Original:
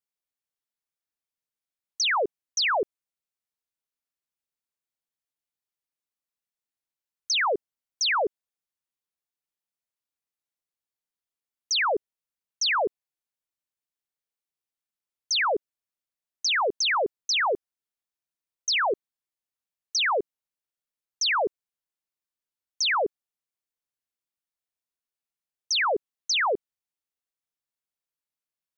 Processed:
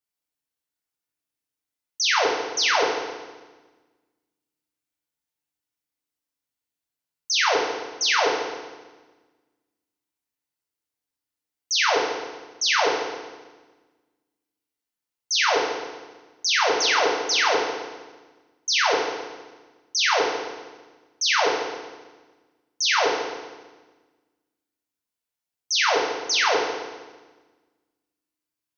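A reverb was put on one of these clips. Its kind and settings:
feedback delay network reverb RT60 1.3 s, low-frequency decay 1.4×, high-frequency decay 0.95×, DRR −3.5 dB
level −1 dB

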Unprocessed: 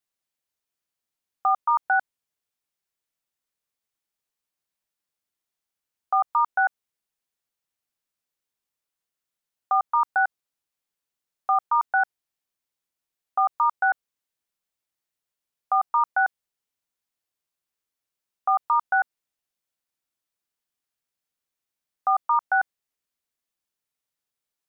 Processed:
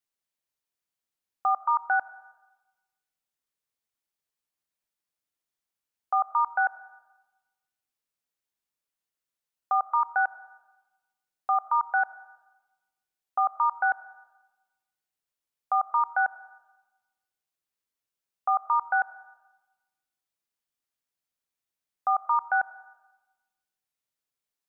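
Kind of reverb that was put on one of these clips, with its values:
comb and all-pass reverb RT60 1.1 s, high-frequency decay 0.9×, pre-delay 40 ms, DRR 17 dB
level −3 dB

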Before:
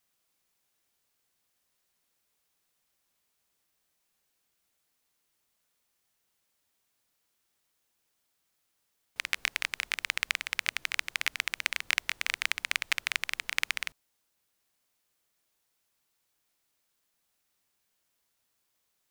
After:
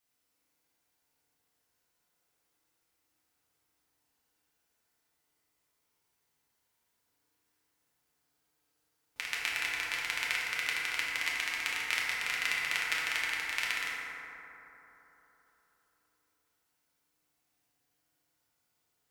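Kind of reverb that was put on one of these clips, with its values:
feedback delay network reverb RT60 3.7 s, high-frequency decay 0.3×, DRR −6.5 dB
level −6.5 dB

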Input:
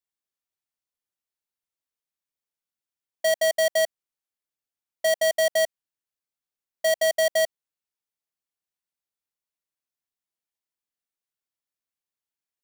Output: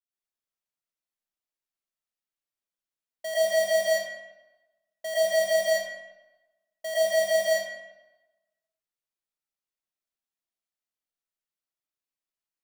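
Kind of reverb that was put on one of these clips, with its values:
comb and all-pass reverb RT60 1.1 s, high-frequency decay 0.75×, pre-delay 70 ms, DRR −9.5 dB
level −12 dB

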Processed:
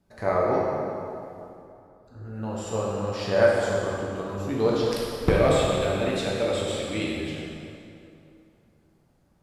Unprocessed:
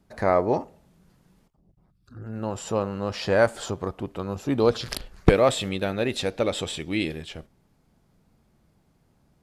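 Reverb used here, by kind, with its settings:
dense smooth reverb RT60 2.7 s, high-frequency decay 0.7×, DRR −5 dB
level −6.5 dB

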